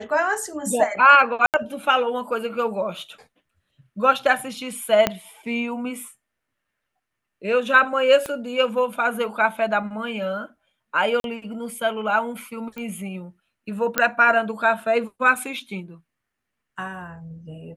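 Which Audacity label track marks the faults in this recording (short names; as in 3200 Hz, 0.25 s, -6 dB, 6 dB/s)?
1.460000	1.540000	gap 78 ms
5.070000	5.070000	pop -4 dBFS
8.260000	8.260000	pop -14 dBFS
11.200000	11.240000	gap 42 ms
12.780000	12.780000	pop -21 dBFS
13.980000	13.980000	pop -3 dBFS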